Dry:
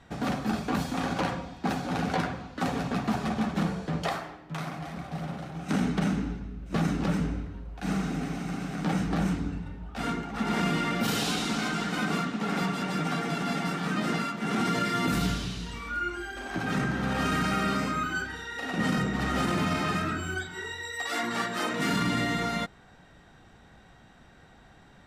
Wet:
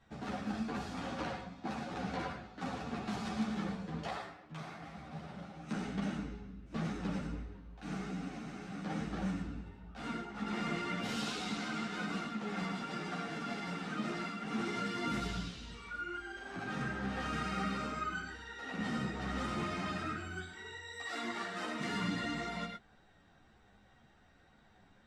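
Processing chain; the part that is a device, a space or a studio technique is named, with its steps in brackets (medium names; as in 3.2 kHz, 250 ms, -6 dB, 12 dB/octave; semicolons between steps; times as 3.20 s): 3.07–3.57 s: treble shelf 3.3 kHz +8.5 dB; gated-style reverb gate 130 ms rising, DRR 3.5 dB; string-machine ensemble chorus (three-phase chorus; low-pass 7.7 kHz 12 dB/octave); trim -8 dB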